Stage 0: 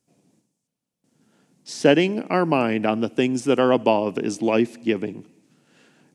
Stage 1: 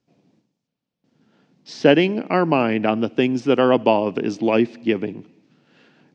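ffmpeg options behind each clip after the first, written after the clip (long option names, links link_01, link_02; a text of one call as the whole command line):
ffmpeg -i in.wav -af "lowpass=frequency=4900:width=0.5412,lowpass=frequency=4900:width=1.3066,volume=2dB" out.wav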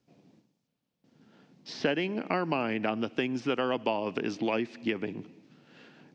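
ffmpeg -i in.wav -filter_complex "[0:a]acrossover=split=1000|2100|4900[link_01][link_02][link_03][link_04];[link_01]acompressor=threshold=-30dB:ratio=4[link_05];[link_02]acompressor=threshold=-36dB:ratio=4[link_06];[link_03]acompressor=threshold=-41dB:ratio=4[link_07];[link_04]acompressor=threshold=-57dB:ratio=4[link_08];[link_05][link_06][link_07][link_08]amix=inputs=4:normalize=0" out.wav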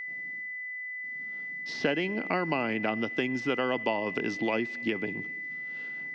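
ffmpeg -i in.wav -af "aeval=exprs='val(0)+0.0178*sin(2*PI*2000*n/s)':channel_layout=same" out.wav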